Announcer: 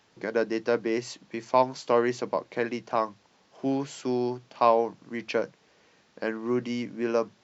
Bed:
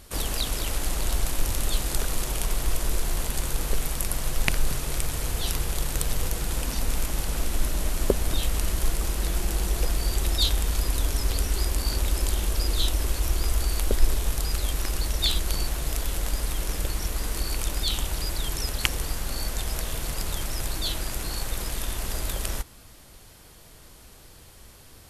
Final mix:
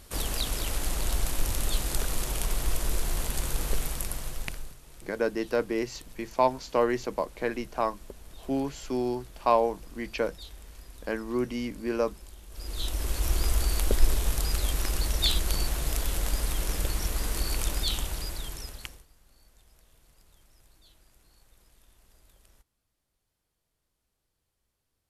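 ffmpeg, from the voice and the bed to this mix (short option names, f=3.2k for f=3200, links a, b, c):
-filter_complex "[0:a]adelay=4850,volume=-1.5dB[a];[1:a]volume=19dB,afade=t=out:st=3.75:d=1:silence=0.1,afade=t=in:st=12.49:d=0.86:silence=0.0841395,afade=t=out:st=17.67:d=1.38:silence=0.0316228[b];[a][b]amix=inputs=2:normalize=0"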